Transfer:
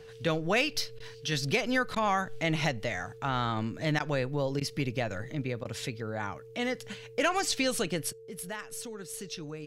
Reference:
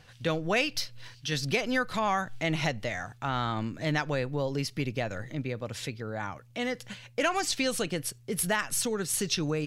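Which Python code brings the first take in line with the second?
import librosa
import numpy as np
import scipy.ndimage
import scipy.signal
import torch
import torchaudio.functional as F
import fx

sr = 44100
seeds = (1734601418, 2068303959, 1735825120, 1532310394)

y = fx.fix_declip(x, sr, threshold_db=-16.5)
y = fx.notch(y, sr, hz=450.0, q=30.0)
y = fx.fix_interpolate(y, sr, at_s=(0.99, 1.95, 3.99, 4.6, 5.64), length_ms=10.0)
y = fx.fix_level(y, sr, at_s=8.13, step_db=11.0)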